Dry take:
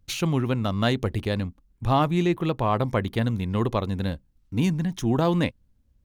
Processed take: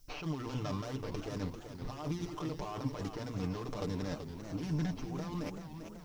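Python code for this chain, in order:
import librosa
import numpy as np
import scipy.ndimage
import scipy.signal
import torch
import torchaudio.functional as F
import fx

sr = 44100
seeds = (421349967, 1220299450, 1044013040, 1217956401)

y = scipy.ndimage.median_filter(x, 25, mode='constant')
y = fx.peak_eq(y, sr, hz=150.0, db=-10.5, octaves=1.6)
y = fx.env_lowpass(y, sr, base_hz=2000.0, full_db=-24.0)
y = fx.over_compress(y, sr, threshold_db=-35.0, ratio=-1.0)
y = fx.hum_notches(y, sr, base_hz=60, count=2)
y = y + 0.8 * np.pad(y, (int(6.7 * sr / 1000.0), 0))[:len(y)]
y = fx.dmg_noise_colour(y, sr, seeds[0], colour='blue', level_db=-67.0)
y = fx.peak_eq(y, sr, hz=5500.0, db=14.0, octaves=0.4)
y = fx.echo_warbled(y, sr, ms=388, feedback_pct=57, rate_hz=2.8, cents=207, wet_db=-8.5)
y = y * librosa.db_to_amplitude(-5.0)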